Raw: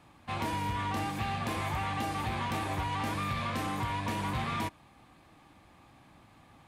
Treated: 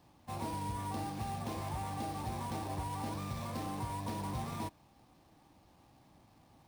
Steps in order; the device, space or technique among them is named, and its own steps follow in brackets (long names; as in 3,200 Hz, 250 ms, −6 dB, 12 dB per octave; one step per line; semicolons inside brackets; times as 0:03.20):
flat-topped bell 2,000 Hz −10 dB
early companding sampler (sample-rate reduction 9,500 Hz, jitter 0%; log-companded quantiser 6 bits)
level −4.5 dB